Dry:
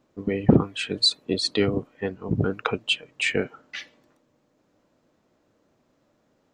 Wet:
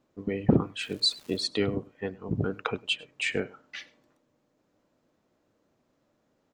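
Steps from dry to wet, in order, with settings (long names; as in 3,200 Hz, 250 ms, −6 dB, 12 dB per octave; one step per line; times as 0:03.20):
on a send: single-tap delay 100 ms −23 dB
0:00.80–0:01.44: on the sum: surface crackle 410 per second −36 dBFS
level −5 dB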